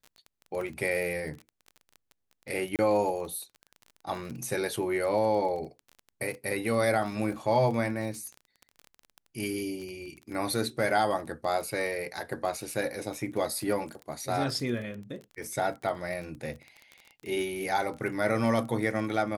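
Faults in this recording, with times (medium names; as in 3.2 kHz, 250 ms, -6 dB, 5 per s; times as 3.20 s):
crackle 22 per s -35 dBFS
2.76–2.79 s: dropout 28 ms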